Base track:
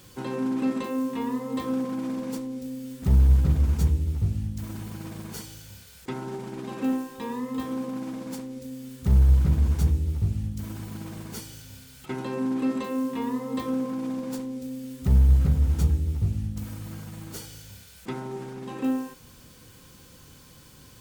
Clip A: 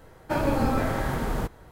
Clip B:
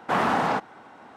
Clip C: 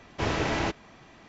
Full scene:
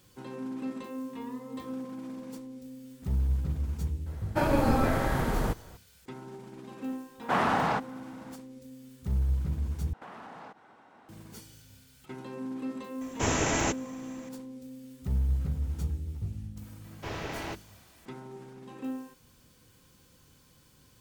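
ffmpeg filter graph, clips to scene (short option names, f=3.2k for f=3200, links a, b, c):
-filter_complex "[2:a]asplit=2[a][b];[3:a]asplit=2[c][d];[0:a]volume=-10dB[e];[a]asubboost=boost=11.5:cutoff=170[f];[b]acompressor=threshold=-34dB:ratio=6:attack=3.2:release=140:knee=1:detection=peak[g];[c]aexciter=amount=9.5:drive=7.9:freq=6.8k[h];[d]bandreject=f=50:t=h:w=6,bandreject=f=100:t=h:w=6,bandreject=f=150:t=h:w=6,bandreject=f=200:t=h:w=6,bandreject=f=250:t=h:w=6,bandreject=f=300:t=h:w=6,bandreject=f=350:t=h:w=6[i];[e]asplit=2[j][k];[j]atrim=end=9.934[l];[g]atrim=end=1.16,asetpts=PTS-STARTPTS,volume=-9.5dB[m];[k]atrim=start=11.086[n];[1:a]atrim=end=1.71,asetpts=PTS-STARTPTS,volume=-0.5dB,afade=t=in:d=0.004:c=hsin,afade=t=out:st=1.706:d=0.004:c=hsin,adelay=4060[o];[f]atrim=end=1.16,asetpts=PTS-STARTPTS,volume=-3dB,afade=t=in:d=0.004:c=hsin,afade=t=out:st=1.156:d=0.004:c=hsin,adelay=7200[p];[h]atrim=end=1.28,asetpts=PTS-STARTPTS,volume=-0.5dB,afade=t=in:d=0.004:c=hsin,afade=t=out:st=1.276:d=0.004:c=hsin,adelay=13010[q];[i]atrim=end=1.28,asetpts=PTS-STARTPTS,volume=-9dB,afade=t=in:d=0.004:c=hsin,afade=t=out:st=1.276:d=0.004:c=hsin,adelay=742644S[r];[l][m]acrossfade=d=0.004:c1=hsin:c2=hsin[s];[s][n]acrossfade=d=0.004:c1=hsin:c2=hsin[t];[t][o][p][q][r]amix=inputs=5:normalize=0"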